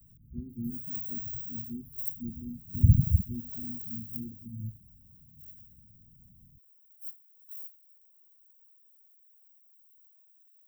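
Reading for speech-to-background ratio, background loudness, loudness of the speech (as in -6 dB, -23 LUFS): 6.5 dB, -38.0 LUFS, -31.5 LUFS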